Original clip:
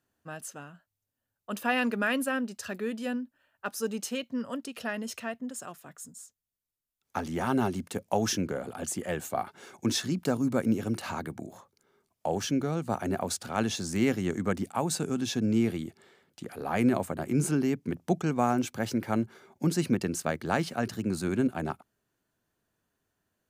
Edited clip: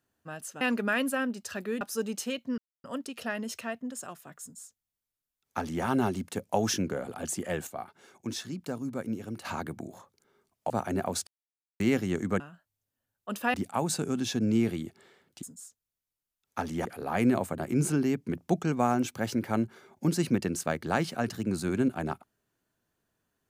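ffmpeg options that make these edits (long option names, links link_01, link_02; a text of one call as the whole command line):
ffmpeg -i in.wav -filter_complex "[0:a]asplit=13[link_01][link_02][link_03][link_04][link_05][link_06][link_07][link_08][link_09][link_10][link_11][link_12][link_13];[link_01]atrim=end=0.612[link_14];[link_02]atrim=start=1.748:end=2.952[link_15];[link_03]atrim=start=3.658:end=4.43,asetpts=PTS-STARTPTS,afade=type=out:start_time=0.768:duration=0.004:curve=hsin,apad=pad_dur=0.26[link_16];[link_04]atrim=start=4.43:end=9.262,asetpts=PTS-STARTPTS,afade=type=in:duration=0.004:curve=hsin[link_17];[link_05]atrim=start=9.258:end=11.042,asetpts=PTS-STARTPTS,volume=-7.5dB[link_18];[link_06]atrim=start=11.038:end=12.292[link_19];[link_07]atrim=start=12.848:end=13.42,asetpts=PTS-STARTPTS,afade=type=out:start_time=0.568:duration=0.004:curve=hsin[link_20];[link_08]atrim=start=13.42:end=13.95,asetpts=PTS-STARTPTS,volume=0[link_21];[link_09]atrim=start=13.95:end=14.552,asetpts=PTS-STARTPTS,afade=type=in:duration=0.004:curve=hsin[link_22];[link_10]atrim=start=0.608:end=1.752[link_23];[link_11]atrim=start=14.548:end=16.442[link_24];[link_12]atrim=start=6.008:end=7.432[link_25];[link_13]atrim=start=16.438[link_26];[link_14][link_15]acrossfade=duration=0.004:curve1=hsin:curve2=hsin[link_27];[link_16][link_17]concat=n=2:v=0:a=1[link_28];[link_27][link_28]acrossfade=duration=0.004:curve1=hsin:curve2=hsin[link_29];[link_29][link_18]acrossfade=duration=0.004:curve1=hsin:curve2=hsin[link_30];[link_30][link_19]acrossfade=duration=0.004:curve1=hsin:curve2=hsin[link_31];[link_20][link_21][link_22]concat=n=3:v=0:a=1[link_32];[link_31][link_32]acrossfade=duration=0.004:curve1=hsin:curve2=hsin[link_33];[link_33][link_23]acrossfade=duration=0.004:curve1=hsin:curve2=hsin[link_34];[link_34][link_24]acrossfade=duration=0.004:curve1=hsin:curve2=hsin[link_35];[link_35][link_25]acrossfade=duration=0.004:curve1=hsin:curve2=hsin[link_36];[link_36][link_26]acrossfade=duration=0.004:curve1=hsin:curve2=hsin" out.wav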